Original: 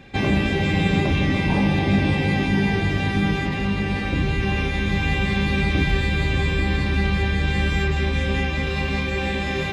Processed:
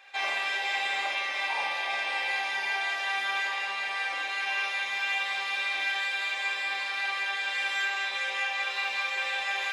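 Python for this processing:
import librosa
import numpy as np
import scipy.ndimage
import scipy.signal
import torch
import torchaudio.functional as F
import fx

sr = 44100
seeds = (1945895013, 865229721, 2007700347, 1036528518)

p1 = scipy.signal.sosfilt(scipy.signal.butter(4, 750.0, 'highpass', fs=sr, output='sos'), x)
p2 = fx.rider(p1, sr, range_db=10, speed_s=2.0)
p3 = p2 + fx.room_early_taps(p2, sr, ms=(45, 74), db=(-4.5, -4.0), dry=0)
y = p3 * 10.0 ** (-4.0 / 20.0)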